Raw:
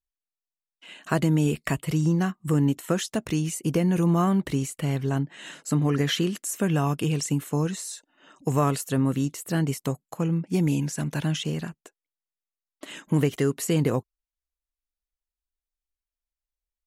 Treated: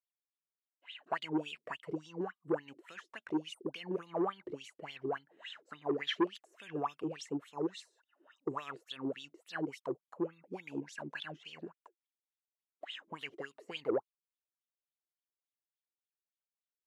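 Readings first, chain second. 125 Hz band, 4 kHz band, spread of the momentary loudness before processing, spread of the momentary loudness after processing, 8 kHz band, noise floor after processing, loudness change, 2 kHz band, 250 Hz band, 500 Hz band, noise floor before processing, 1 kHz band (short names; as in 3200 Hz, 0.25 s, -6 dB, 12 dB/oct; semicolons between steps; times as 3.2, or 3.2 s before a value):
-28.0 dB, -9.0 dB, 8 LU, 13 LU, -26.0 dB, under -85 dBFS, -14.0 dB, -9.0 dB, -15.0 dB, -9.5 dB, under -85 dBFS, -9.0 dB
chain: spectral gain 3.53–3.73, 1500–8000 Hz -26 dB; bell 4900 Hz +2 dB; wah 3.5 Hz 330–3600 Hz, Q 10; core saturation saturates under 630 Hz; gain +4 dB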